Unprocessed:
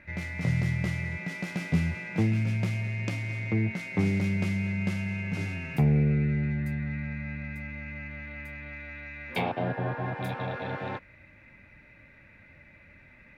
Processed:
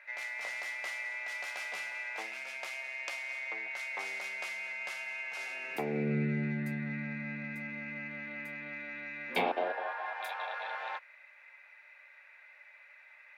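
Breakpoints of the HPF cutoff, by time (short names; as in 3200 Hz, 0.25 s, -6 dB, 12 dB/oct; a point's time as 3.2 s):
HPF 24 dB/oct
5.38 s 680 Hz
6.17 s 180 Hz
9.27 s 180 Hz
9.93 s 740 Hz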